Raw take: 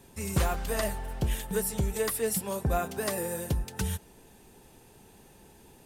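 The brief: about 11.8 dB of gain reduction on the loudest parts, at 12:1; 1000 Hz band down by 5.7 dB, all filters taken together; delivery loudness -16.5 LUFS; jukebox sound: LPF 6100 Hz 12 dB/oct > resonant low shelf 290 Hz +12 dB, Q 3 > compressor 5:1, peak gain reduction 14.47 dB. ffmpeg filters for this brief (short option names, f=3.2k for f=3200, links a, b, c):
-af "equalizer=f=1k:t=o:g=-6,acompressor=threshold=-35dB:ratio=12,lowpass=6.1k,lowshelf=f=290:t=q:w=3:g=12,acompressor=threshold=-32dB:ratio=5,volume=21.5dB"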